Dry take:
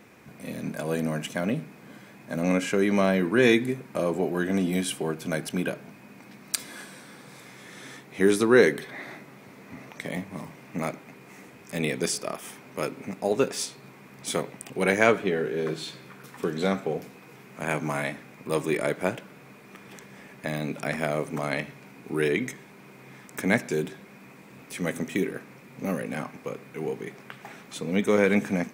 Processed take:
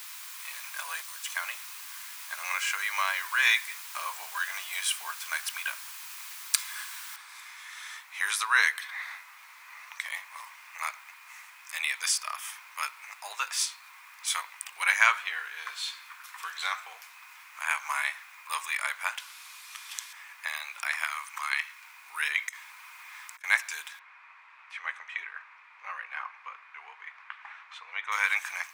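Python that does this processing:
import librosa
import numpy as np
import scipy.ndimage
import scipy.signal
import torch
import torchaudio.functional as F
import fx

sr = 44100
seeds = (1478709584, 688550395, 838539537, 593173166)

y = fx.spec_box(x, sr, start_s=1.02, length_s=0.24, low_hz=290.0, high_hz=3300.0, gain_db=-14)
y = fx.noise_floor_step(y, sr, seeds[0], at_s=7.16, before_db=-46, after_db=-67, tilt_db=0.0)
y = fx.band_shelf(y, sr, hz=6300.0, db=11.0, octaves=2.3, at=(19.18, 20.13))
y = fx.highpass(y, sr, hz=910.0, slope=24, at=(21.04, 21.83))
y = fx.over_compress(y, sr, threshold_db=-44.0, ratio=-0.5, at=(22.49, 23.44))
y = fx.lowpass(y, sr, hz=2200.0, slope=12, at=(23.99, 28.12))
y = scipy.signal.sosfilt(scipy.signal.ellip(4, 1.0, 80, 1000.0, 'highpass', fs=sr, output='sos'), y)
y = y * 10.0 ** (3.5 / 20.0)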